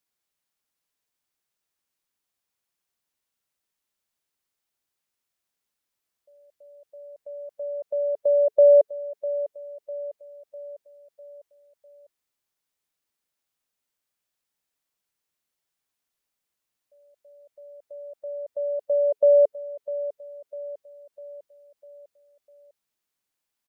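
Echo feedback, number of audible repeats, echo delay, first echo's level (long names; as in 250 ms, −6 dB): 50%, 4, 651 ms, −14.5 dB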